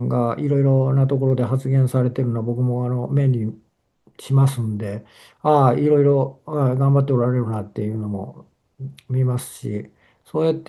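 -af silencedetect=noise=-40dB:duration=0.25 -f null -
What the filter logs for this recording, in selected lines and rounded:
silence_start: 3.57
silence_end: 4.07 | silence_duration: 0.50
silence_start: 8.42
silence_end: 8.80 | silence_duration: 0.38
silence_start: 9.87
silence_end: 10.28 | silence_duration: 0.40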